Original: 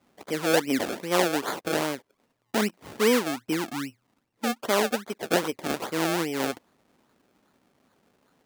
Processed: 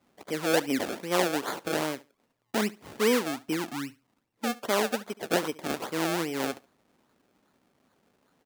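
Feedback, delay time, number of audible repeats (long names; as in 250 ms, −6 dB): 20%, 71 ms, 2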